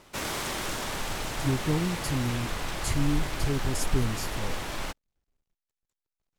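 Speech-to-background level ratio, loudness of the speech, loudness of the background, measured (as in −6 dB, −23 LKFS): 2.0 dB, −31.5 LKFS, −33.5 LKFS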